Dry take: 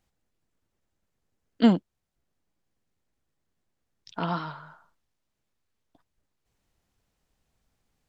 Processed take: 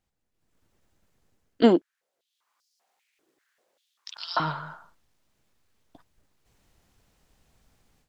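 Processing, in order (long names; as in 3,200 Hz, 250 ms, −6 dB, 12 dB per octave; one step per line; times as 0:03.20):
automatic gain control gain up to 15 dB
0:01.62–0:04.40: high-pass on a step sequencer 5.1 Hz 350–5,000 Hz
level −5 dB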